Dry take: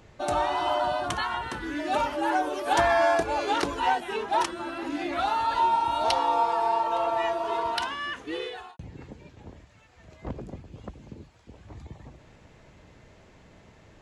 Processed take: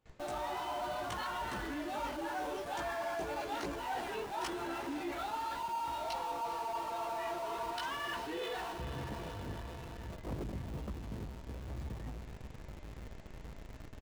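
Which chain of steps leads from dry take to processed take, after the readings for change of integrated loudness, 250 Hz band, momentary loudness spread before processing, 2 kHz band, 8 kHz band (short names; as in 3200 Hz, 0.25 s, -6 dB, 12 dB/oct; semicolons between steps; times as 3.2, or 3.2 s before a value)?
-13.0 dB, -8.0 dB, 20 LU, -11.0 dB, -8.0 dB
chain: chorus voices 4, 1.1 Hz, delay 17 ms, depth 3.2 ms; diffused feedback echo 0.466 s, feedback 64%, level -15 dB; gate with hold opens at -47 dBFS; reverse; compressor 6:1, threshold -39 dBFS, peak gain reduction 17.5 dB; reverse; downsampling 32000 Hz; in parallel at -5 dB: Schmitt trigger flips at -49.5 dBFS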